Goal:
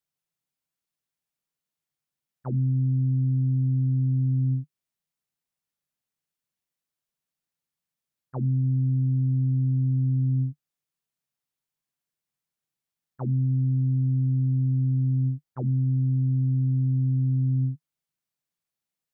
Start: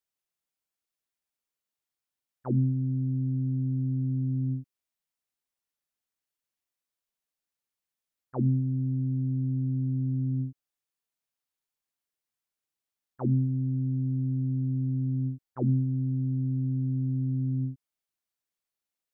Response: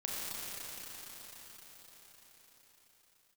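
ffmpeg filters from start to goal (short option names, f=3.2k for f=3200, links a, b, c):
-af "alimiter=level_in=2.5dB:limit=-24dB:level=0:latency=1:release=182,volume=-2.5dB,equalizer=f=150:t=o:w=0.73:g=12"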